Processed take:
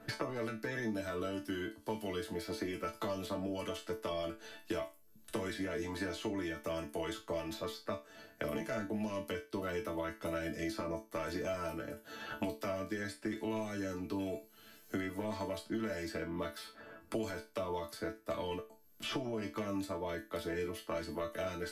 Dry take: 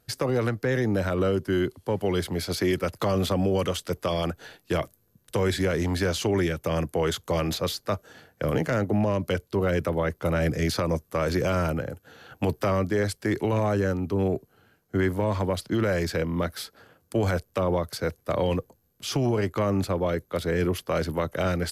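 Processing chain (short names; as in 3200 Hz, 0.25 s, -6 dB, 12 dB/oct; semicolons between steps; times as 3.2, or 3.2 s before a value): resonator bank A3 sus4, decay 0.24 s; three-band squash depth 100%; gain +4 dB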